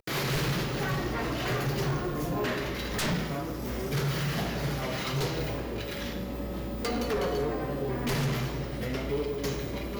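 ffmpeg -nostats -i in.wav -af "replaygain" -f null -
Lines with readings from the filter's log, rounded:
track_gain = +13.4 dB
track_peak = 0.054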